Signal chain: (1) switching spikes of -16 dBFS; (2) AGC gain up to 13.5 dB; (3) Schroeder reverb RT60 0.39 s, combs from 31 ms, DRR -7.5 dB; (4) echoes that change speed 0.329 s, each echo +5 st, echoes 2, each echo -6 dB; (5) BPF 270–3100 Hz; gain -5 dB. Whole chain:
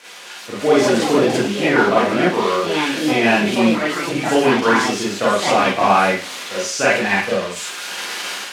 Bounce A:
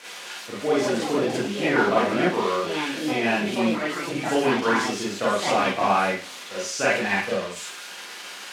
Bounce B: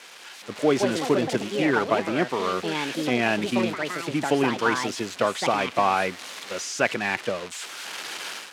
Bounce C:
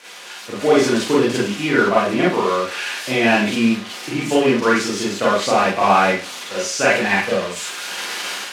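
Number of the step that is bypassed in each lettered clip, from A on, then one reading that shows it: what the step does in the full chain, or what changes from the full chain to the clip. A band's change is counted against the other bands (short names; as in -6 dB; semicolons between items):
2, crest factor change +1.5 dB; 3, crest factor change +3.0 dB; 4, loudness change -1.0 LU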